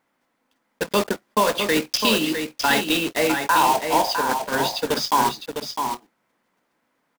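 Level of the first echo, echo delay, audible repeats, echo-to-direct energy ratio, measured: -6.5 dB, 656 ms, 1, -6.5 dB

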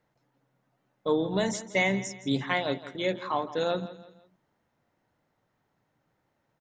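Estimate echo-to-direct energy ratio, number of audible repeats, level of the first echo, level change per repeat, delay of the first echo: -15.0 dB, 3, -15.5 dB, -8.5 dB, 167 ms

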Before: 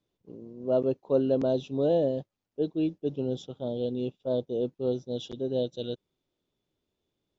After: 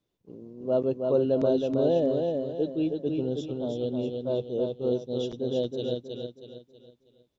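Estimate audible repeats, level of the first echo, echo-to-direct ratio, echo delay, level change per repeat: 4, -4.0 dB, -3.5 dB, 320 ms, -8.5 dB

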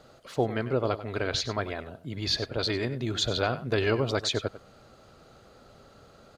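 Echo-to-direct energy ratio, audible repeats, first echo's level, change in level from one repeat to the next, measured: -14.0 dB, 1, -14.0 dB, no regular repeats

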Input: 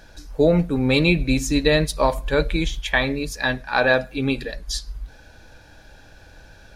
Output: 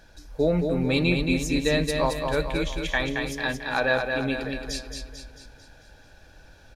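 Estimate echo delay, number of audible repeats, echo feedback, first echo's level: 222 ms, 5, 50%, -5.0 dB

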